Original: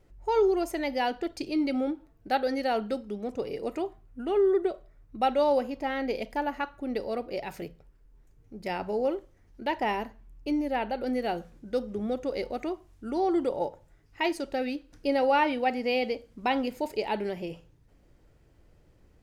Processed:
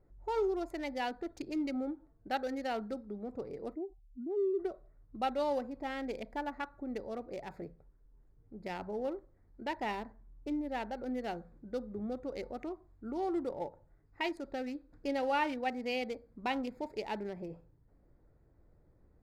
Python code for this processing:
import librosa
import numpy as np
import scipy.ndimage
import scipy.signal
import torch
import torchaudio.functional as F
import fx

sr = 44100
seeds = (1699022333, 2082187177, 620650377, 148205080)

y = fx.spec_expand(x, sr, power=2.3, at=(3.73, 4.58), fade=0.02)
y = fx.wiener(y, sr, points=15)
y = fx.dynamic_eq(y, sr, hz=520.0, q=0.7, threshold_db=-36.0, ratio=4.0, max_db=-4)
y = y * 10.0 ** (-5.0 / 20.0)